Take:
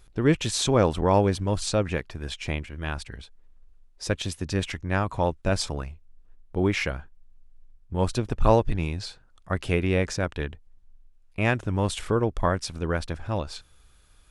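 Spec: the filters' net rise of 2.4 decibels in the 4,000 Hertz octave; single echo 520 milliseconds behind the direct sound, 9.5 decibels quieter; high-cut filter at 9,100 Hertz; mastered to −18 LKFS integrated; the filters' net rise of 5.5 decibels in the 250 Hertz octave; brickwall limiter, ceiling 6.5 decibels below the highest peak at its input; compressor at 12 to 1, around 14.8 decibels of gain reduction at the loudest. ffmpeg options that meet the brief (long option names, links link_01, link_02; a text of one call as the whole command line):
ffmpeg -i in.wav -af "lowpass=9100,equalizer=frequency=250:width_type=o:gain=7.5,equalizer=frequency=4000:width_type=o:gain=3,acompressor=threshold=-26dB:ratio=12,alimiter=limit=-22.5dB:level=0:latency=1,aecho=1:1:520:0.335,volume=17dB" out.wav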